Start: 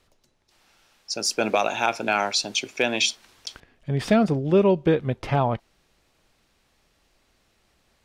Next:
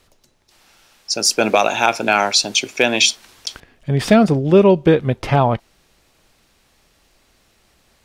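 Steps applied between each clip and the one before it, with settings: high shelf 7000 Hz +5 dB; gain +7 dB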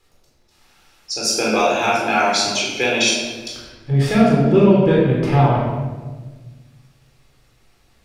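shoebox room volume 1100 m³, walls mixed, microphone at 4 m; gain -9.5 dB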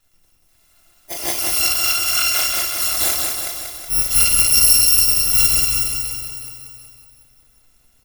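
FFT order left unsorted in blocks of 256 samples; on a send: feedback echo 0.185 s, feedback 59%, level -4 dB; on the sum: gain -2.5 dB

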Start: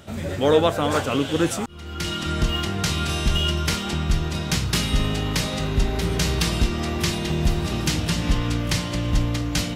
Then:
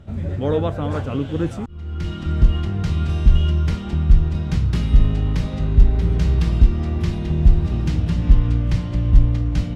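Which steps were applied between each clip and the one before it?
RIAA curve playback; gain -7 dB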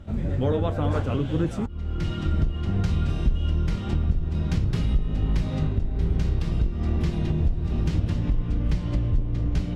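octaver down 1 oct, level -4 dB; compressor 6:1, threshold -19 dBFS, peak gain reduction 15.5 dB; flange 0.58 Hz, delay 3.4 ms, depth 9.3 ms, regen -58%; gain +4 dB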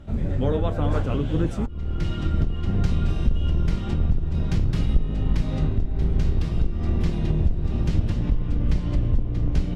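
octaver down 2 oct, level -1 dB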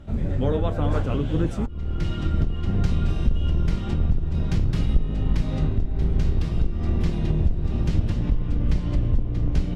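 nothing audible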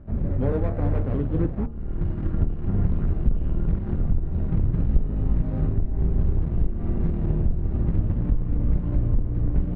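median filter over 41 samples; LPF 1600 Hz 12 dB/oct; de-hum 75.94 Hz, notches 19

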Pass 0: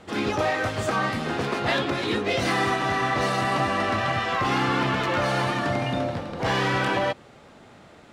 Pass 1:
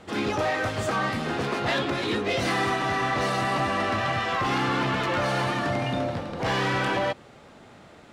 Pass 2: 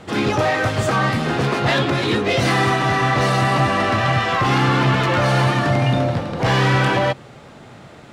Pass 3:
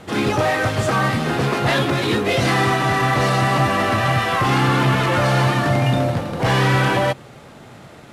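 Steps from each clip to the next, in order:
soft clip -17.5 dBFS, distortion -19 dB
bell 130 Hz +7.5 dB 0.54 oct; gain +7 dB
CVSD 64 kbps

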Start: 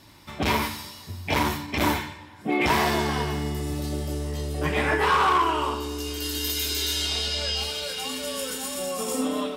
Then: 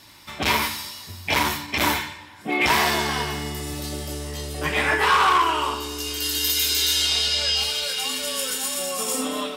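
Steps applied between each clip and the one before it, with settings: tilt shelf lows -5 dB, about 850 Hz; gain +1.5 dB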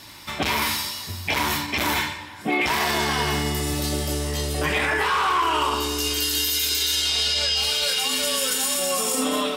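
limiter -19 dBFS, peak gain reduction 11 dB; gain +5.5 dB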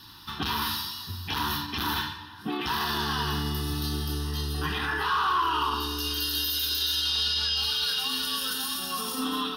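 fixed phaser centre 2200 Hz, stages 6; gain -2.5 dB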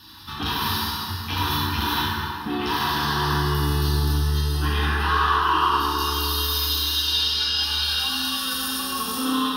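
plate-style reverb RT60 3 s, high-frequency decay 0.5×, DRR -4 dB

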